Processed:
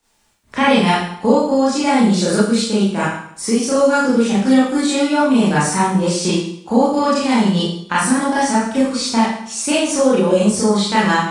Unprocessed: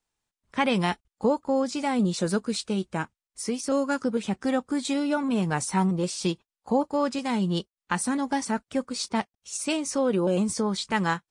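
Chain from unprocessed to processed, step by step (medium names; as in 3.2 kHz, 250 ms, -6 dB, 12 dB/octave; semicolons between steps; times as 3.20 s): Schroeder reverb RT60 0.58 s, combs from 27 ms, DRR -9.5 dB; Chebyshev shaper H 4 -44 dB, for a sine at -1 dBFS; three bands compressed up and down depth 40%; trim +1 dB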